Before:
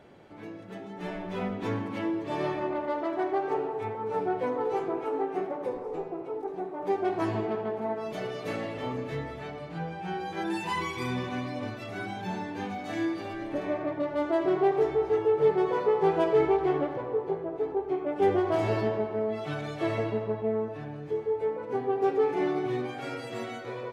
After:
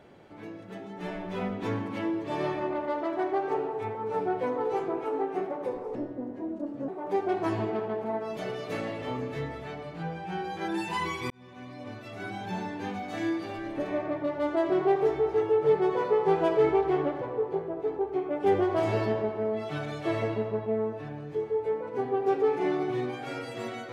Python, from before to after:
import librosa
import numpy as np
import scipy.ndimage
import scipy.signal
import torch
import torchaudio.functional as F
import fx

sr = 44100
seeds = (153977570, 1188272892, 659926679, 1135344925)

y = fx.edit(x, sr, fx.speed_span(start_s=5.95, length_s=0.69, speed=0.74),
    fx.fade_in_span(start_s=11.06, length_s=1.16), tone=tone)